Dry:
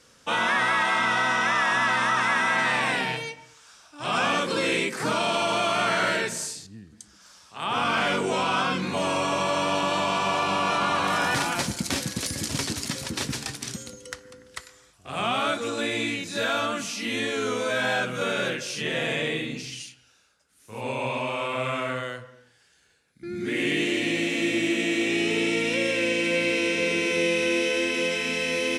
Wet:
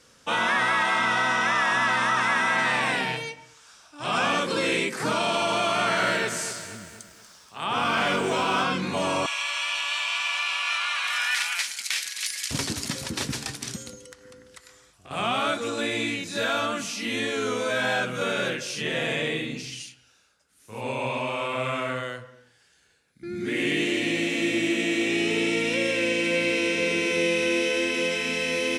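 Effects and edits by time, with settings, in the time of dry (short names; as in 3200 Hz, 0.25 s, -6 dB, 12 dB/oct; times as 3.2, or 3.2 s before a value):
5.73–8.64 lo-fi delay 0.239 s, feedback 55%, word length 8-bit, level -11 dB
9.26–12.51 resonant high-pass 2100 Hz, resonance Q 1.8
14.05–15.11 compressor 4:1, threshold -43 dBFS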